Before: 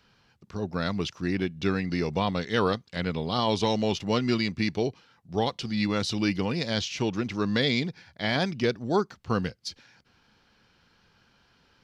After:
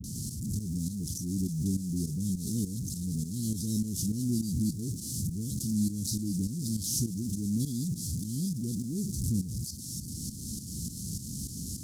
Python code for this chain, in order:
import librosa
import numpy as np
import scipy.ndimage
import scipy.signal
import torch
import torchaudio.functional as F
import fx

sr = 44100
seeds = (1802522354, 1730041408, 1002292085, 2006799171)

p1 = fx.delta_mod(x, sr, bps=64000, step_db=-24.5)
p2 = fx.quant_dither(p1, sr, seeds[0], bits=10, dither='triangular')
p3 = scipy.signal.sosfilt(scipy.signal.butter(2, 68.0, 'highpass', fs=sr, output='sos'), p2)
p4 = fx.dispersion(p3, sr, late='highs', ms=41.0, hz=770.0)
p5 = p4 + fx.echo_single(p4, sr, ms=403, db=-21.0, dry=0)
p6 = fx.dynamic_eq(p5, sr, hz=870.0, q=2.5, threshold_db=-45.0, ratio=4.0, max_db=-8)
p7 = fx.tremolo_shape(p6, sr, shape='saw_up', hz=3.4, depth_pct=75)
p8 = scipy.signal.sosfilt(scipy.signal.cheby2(4, 70, [780.0, 2100.0], 'bandstop', fs=sr, output='sos'), p7)
p9 = fx.low_shelf(p8, sr, hz=140.0, db=4.5)
p10 = fx.echo_wet_highpass(p9, sr, ms=351, feedback_pct=64, hz=2400.0, wet_db=-19.0)
p11 = fx.quant_float(p10, sr, bits=6)
y = fx.pre_swell(p11, sr, db_per_s=39.0)